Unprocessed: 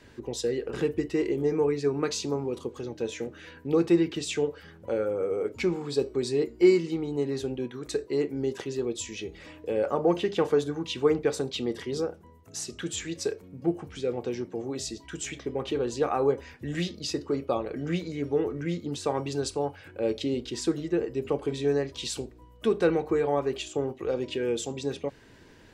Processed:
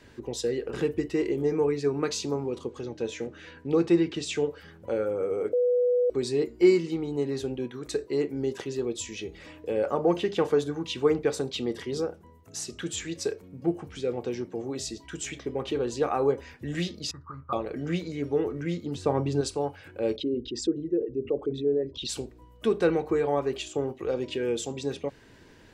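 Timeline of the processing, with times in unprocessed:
2.50–4.35 s: low-pass 8.5 kHz
5.53–6.10 s: bleep 492 Hz -20 dBFS
17.11–17.53 s: FFT filter 120 Hz 0 dB, 410 Hz -28 dB, 720 Hz -15 dB, 1.2 kHz +8 dB, 2.6 kHz -28 dB
18.95–19.41 s: tilt EQ -2.5 dB/octave
20.16–22.09 s: resonances exaggerated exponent 2

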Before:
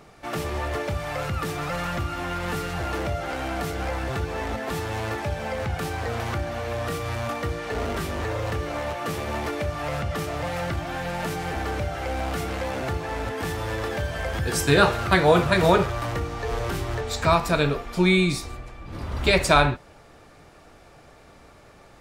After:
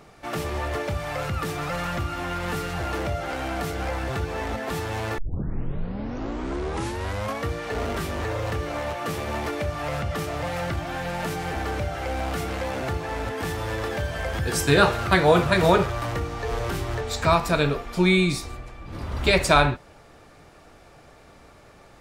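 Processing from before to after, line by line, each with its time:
5.18 s: tape start 2.30 s

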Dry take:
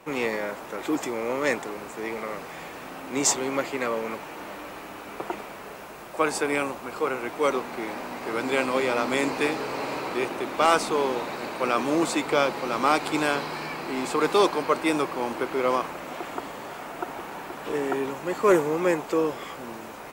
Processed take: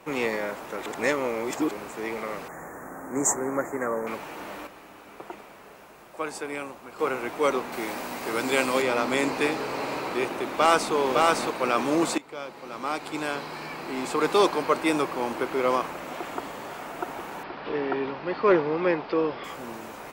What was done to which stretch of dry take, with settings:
0.86–1.71 s: reverse
2.48–4.07 s: elliptic band-stop 1.8–6.8 kHz, stop band 70 dB
4.67–6.99 s: gain -8 dB
7.72–8.82 s: treble shelf 4.6 kHz +9.5 dB
10.49–10.94 s: echo throw 560 ms, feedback 10%, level -1.5 dB
12.18–14.48 s: fade in, from -20 dB
17.43–19.44 s: elliptic low-pass 4.9 kHz

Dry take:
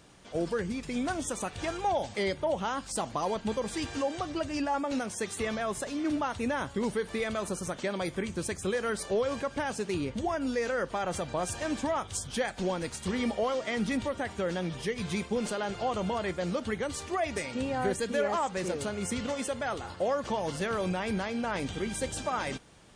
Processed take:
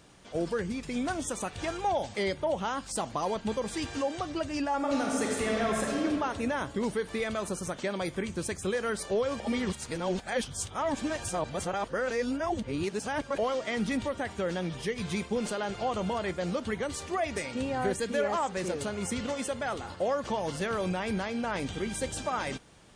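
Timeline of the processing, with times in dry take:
4.75–5.99 s: reverb throw, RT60 2.3 s, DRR -1.5 dB
9.40–13.38 s: reverse
15.11–19.95 s: delay 631 ms -22 dB

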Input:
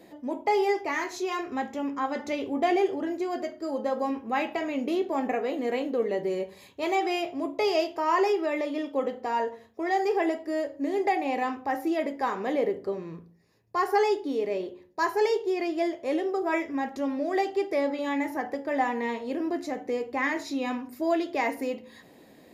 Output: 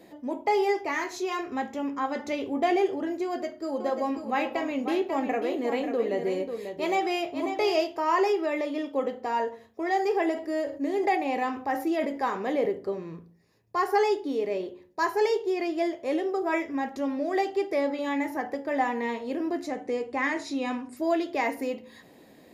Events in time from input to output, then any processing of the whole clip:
3.26–7.83 s: delay 541 ms -8 dB
10.32–12.66 s: decay stretcher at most 100 dB/s
19.67–20.97 s: careless resampling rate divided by 2×, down none, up filtered

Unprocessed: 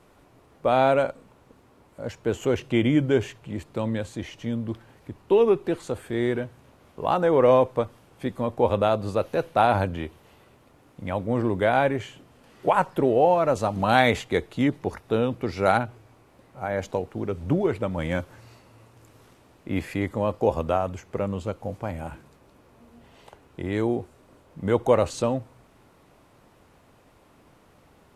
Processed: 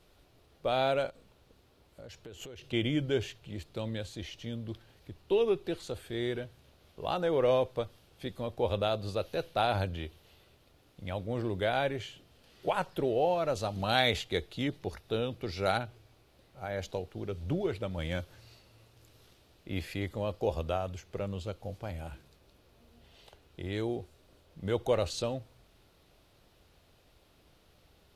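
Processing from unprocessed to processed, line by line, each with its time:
1.09–2.73 s: compression, threshold -35 dBFS
whole clip: graphic EQ 125/250/500/1000/2000/4000/8000 Hz -6/-10/-4/-11/-6/+5/-7 dB

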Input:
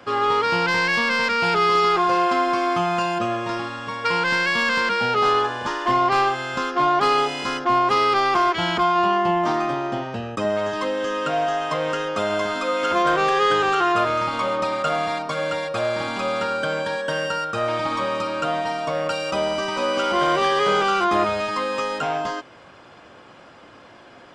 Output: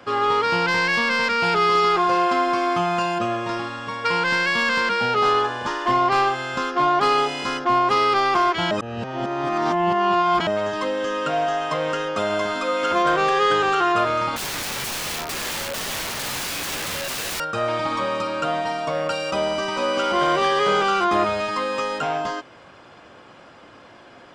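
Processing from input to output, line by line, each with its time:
8.71–10.47 s: reverse
14.36–17.40 s: integer overflow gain 23.5 dB

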